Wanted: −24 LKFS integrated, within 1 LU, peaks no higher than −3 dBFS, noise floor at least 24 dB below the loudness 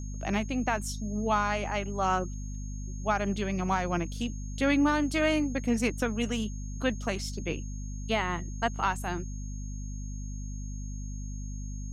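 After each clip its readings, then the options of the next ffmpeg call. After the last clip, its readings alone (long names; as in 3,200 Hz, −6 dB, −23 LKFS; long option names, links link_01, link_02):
mains hum 50 Hz; hum harmonics up to 250 Hz; level of the hum −34 dBFS; interfering tone 6,500 Hz; level of the tone −49 dBFS; integrated loudness −31.0 LKFS; sample peak −14.5 dBFS; target loudness −24.0 LKFS
→ -af "bandreject=frequency=50:width_type=h:width=4,bandreject=frequency=100:width_type=h:width=4,bandreject=frequency=150:width_type=h:width=4,bandreject=frequency=200:width_type=h:width=4,bandreject=frequency=250:width_type=h:width=4"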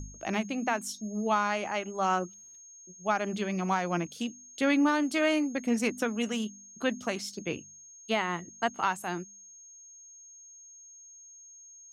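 mains hum none found; interfering tone 6,500 Hz; level of the tone −49 dBFS
→ -af "bandreject=frequency=6500:width=30"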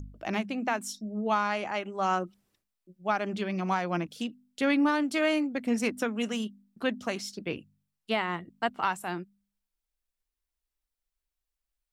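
interfering tone none found; integrated loudness −30.5 LKFS; sample peak −15.0 dBFS; target loudness −24.0 LKFS
→ -af "volume=6.5dB"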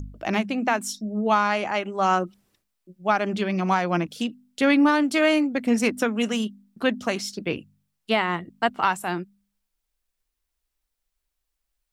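integrated loudness −24.0 LKFS; sample peak −8.5 dBFS; background noise floor −81 dBFS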